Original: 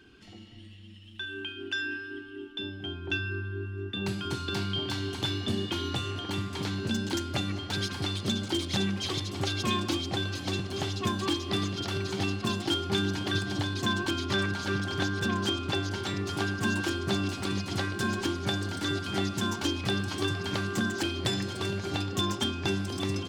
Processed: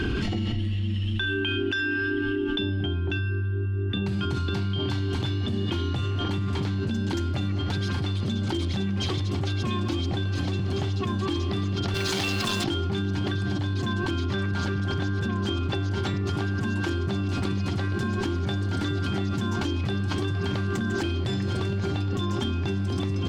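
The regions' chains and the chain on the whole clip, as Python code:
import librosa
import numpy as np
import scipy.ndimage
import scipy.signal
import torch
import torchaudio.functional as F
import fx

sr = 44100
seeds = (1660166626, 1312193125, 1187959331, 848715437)

y = fx.chain(x, sr, fx.tilt_eq(slope=3.5),
    fx.quant_companded(bits=4),
    fx.transformer_sat(knee_hz=2200.0), at=(11.94, 12.64))
y = fx.lowpass(y, sr, hz=3400.0, slope=6)
y = fx.low_shelf(y, sr, hz=170.0, db=11.5)
y = fx.env_flatten(y, sr, amount_pct=100)
y = y * librosa.db_to_amplitude(-7.0)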